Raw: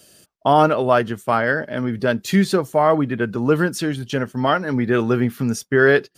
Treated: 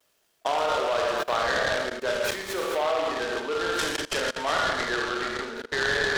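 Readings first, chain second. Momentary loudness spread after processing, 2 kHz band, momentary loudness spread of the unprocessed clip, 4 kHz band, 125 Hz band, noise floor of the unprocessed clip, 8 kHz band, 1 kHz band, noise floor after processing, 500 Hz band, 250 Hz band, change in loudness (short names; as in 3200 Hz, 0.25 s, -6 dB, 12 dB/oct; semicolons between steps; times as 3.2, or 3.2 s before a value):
5 LU, -4.0 dB, 8 LU, +2.5 dB, -21.0 dB, -58 dBFS, -1.0 dB, -7.0 dB, -69 dBFS, -8.0 dB, -17.5 dB, -7.5 dB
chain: band shelf 7400 Hz -11 dB; low-pass sweep 12000 Hz -> 1800 Hz, 2.09–4.91; high shelf 3000 Hz +6.5 dB; Schroeder reverb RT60 1.1 s, combs from 27 ms, DRR -1.5 dB; vibrato 0.73 Hz 39 cents; level quantiser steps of 22 dB; HPF 410 Hz 24 dB/oct; noise-modulated delay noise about 2000 Hz, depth 0.055 ms; gain -2 dB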